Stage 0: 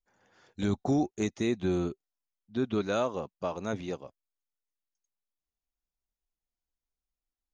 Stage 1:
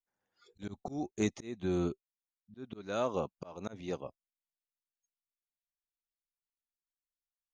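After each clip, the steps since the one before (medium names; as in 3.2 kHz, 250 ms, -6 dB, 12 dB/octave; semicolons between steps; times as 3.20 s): spectral noise reduction 25 dB; slow attack 484 ms; gain riding within 4 dB 2 s; trim +2 dB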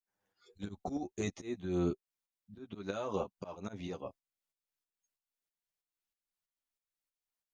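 peak limiter -26 dBFS, peak gain reduction 7.5 dB; tremolo saw up 3.1 Hz, depth 70%; flange 0.29 Hz, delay 9.9 ms, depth 1.6 ms, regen -6%; trim +7 dB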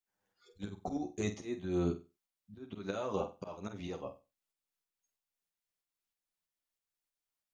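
flutter echo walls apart 8.1 m, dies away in 0.28 s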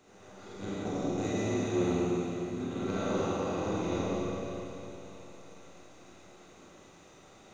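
spectral levelling over time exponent 0.4; hard clipper -21 dBFS, distortion -27 dB; Schroeder reverb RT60 3.4 s, combs from 28 ms, DRR -8 dB; trim -7 dB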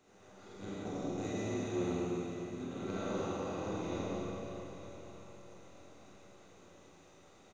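feedback delay 926 ms, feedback 49%, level -16.5 dB; trim -6 dB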